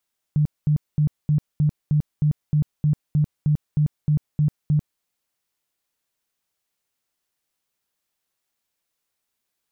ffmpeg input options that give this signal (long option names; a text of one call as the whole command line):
ffmpeg -f lavfi -i "aevalsrc='0.178*sin(2*PI*150*mod(t,0.31))*lt(mod(t,0.31),14/150)':duration=4.65:sample_rate=44100" out.wav